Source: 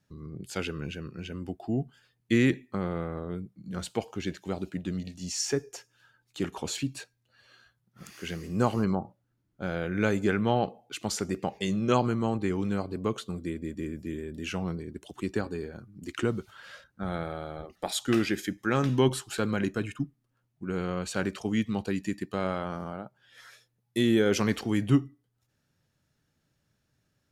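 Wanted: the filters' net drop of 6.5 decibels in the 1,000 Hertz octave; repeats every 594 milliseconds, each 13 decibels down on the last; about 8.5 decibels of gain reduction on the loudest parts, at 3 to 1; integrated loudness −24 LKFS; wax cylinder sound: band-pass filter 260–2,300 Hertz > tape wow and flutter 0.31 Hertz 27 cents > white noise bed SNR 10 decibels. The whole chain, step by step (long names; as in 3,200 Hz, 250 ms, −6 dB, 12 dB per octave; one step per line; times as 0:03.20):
parametric band 1,000 Hz −9 dB
downward compressor 3 to 1, threshold −29 dBFS
band-pass filter 260–2,300 Hz
repeating echo 594 ms, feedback 22%, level −13 dB
tape wow and flutter 0.31 Hz 27 cents
white noise bed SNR 10 dB
level +15 dB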